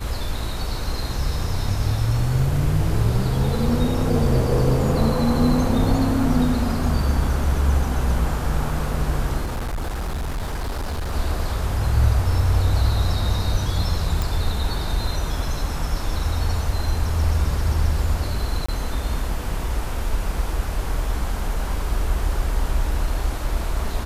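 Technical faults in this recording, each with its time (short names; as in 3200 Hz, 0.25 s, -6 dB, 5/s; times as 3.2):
9.43–11.13 clipped -22.5 dBFS
14.22 pop
18.66–18.68 gap 25 ms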